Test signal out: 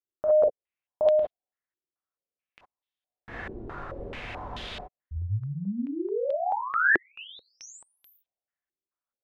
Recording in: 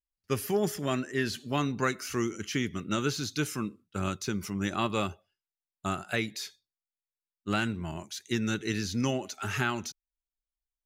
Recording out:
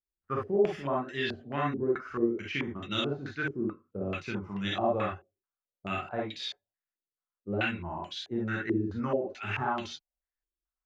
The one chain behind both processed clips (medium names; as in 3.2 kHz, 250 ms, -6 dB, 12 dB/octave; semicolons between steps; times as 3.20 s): gated-style reverb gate 80 ms rising, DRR -3 dB; step-sequenced low-pass 4.6 Hz 360–3400 Hz; trim -7.5 dB